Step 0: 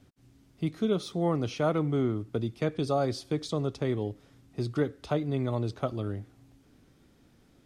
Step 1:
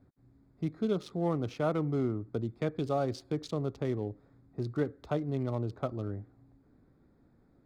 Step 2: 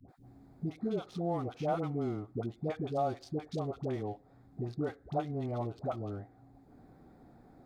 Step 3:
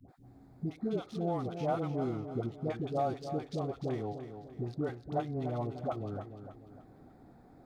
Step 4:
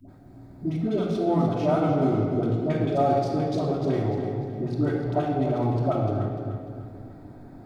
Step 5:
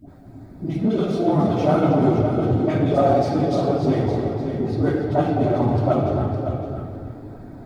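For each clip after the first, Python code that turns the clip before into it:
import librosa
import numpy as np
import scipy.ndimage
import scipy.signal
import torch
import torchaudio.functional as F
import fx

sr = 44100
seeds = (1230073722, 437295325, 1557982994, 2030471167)

y1 = fx.wiener(x, sr, points=15)
y1 = y1 * librosa.db_to_amplitude(-3.0)
y2 = fx.peak_eq(y1, sr, hz=750.0, db=12.0, octaves=0.32)
y2 = fx.dispersion(y2, sr, late='highs', ms=87.0, hz=600.0)
y2 = fx.band_squash(y2, sr, depth_pct=40)
y2 = y2 * librosa.db_to_amplitude(-4.0)
y3 = fx.echo_feedback(y2, sr, ms=297, feedback_pct=41, wet_db=-9.5)
y4 = fx.room_shoebox(y3, sr, seeds[0], volume_m3=2600.0, walls='mixed', distance_m=2.8)
y4 = y4 * librosa.db_to_amplitude(5.5)
y5 = fx.phase_scramble(y4, sr, seeds[1], window_ms=50)
y5 = y5 + 10.0 ** (-9.5 / 20.0) * np.pad(y5, (int(561 * sr / 1000.0), 0))[:len(y5)]
y5 = fx.transformer_sat(y5, sr, knee_hz=280.0)
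y5 = y5 * librosa.db_to_amplitude(5.0)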